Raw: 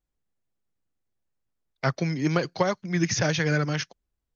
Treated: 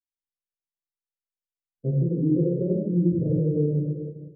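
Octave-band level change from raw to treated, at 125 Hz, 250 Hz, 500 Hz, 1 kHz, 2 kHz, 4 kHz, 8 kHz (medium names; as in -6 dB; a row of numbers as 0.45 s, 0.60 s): +4.0 dB, +4.5 dB, +1.0 dB, under -30 dB, under -40 dB, under -40 dB, no reading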